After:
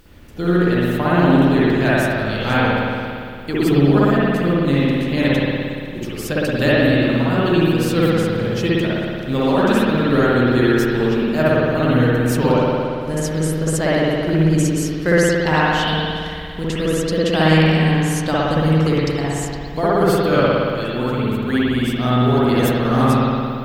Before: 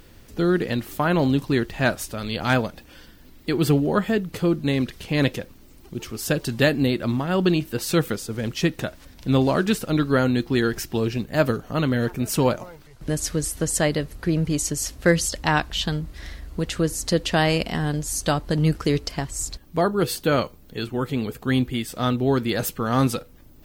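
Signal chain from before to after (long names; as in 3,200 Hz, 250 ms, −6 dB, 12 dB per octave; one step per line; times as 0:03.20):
log-companded quantiser 8 bits
spring reverb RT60 2.3 s, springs 57 ms, chirp 65 ms, DRR −8.5 dB
level −2.5 dB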